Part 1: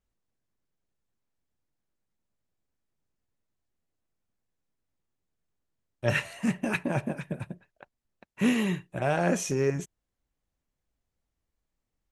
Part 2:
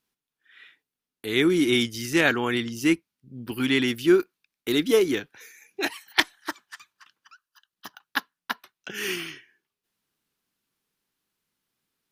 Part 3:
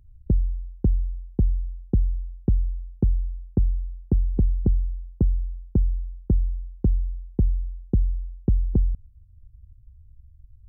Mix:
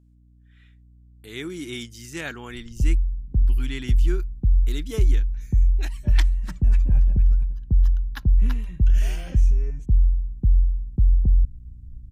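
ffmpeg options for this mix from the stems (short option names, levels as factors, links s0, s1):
-filter_complex "[0:a]asplit=2[s0][s1];[s1]adelay=3.2,afreqshift=1.7[s2];[s0][s2]amix=inputs=2:normalize=1,volume=0.2[s3];[1:a]equalizer=f=7500:w=2.2:g=9.5,aeval=exprs='val(0)+0.00708*(sin(2*PI*60*n/s)+sin(2*PI*2*60*n/s)/2+sin(2*PI*3*60*n/s)/3+sin(2*PI*4*60*n/s)/4+sin(2*PI*5*60*n/s)/5)':c=same,volume=0.266[s4];[2:a]alimiter=limit=0.119:level=0:latency=1:release=76,adelay=2500,volume=0.596[s5];[s3][s4][s5]amix=inputs=3:normalize=0,asubboost=boost=4:cutoff=170"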